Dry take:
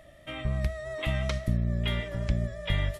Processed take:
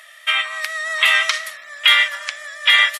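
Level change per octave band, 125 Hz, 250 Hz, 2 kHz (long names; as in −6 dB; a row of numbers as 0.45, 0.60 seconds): below −40 dB, below −30 dB, +23.0 dB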